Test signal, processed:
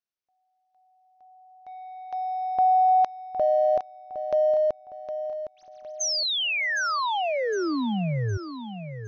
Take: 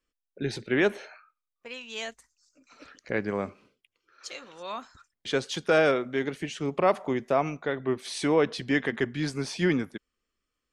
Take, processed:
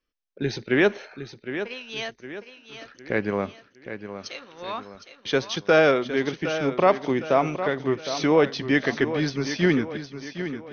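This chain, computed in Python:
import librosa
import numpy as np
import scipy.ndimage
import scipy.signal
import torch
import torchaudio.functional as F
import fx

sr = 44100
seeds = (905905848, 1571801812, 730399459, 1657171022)

p1 = np.sign(x) * np.maximum(np.abs(x) - 10.0 ** (-48.0 / 20.0), 0.0)
p2 = x + (p1 * librosa.db_to_amplitude(-4.0))
p3 = fx.brickwall_lowpass(p2, sr, high_hz=6400.0)
y = fx.echo_feedback(p3, sr, ms=761, feedback_pct=43, wet_db=-10.5)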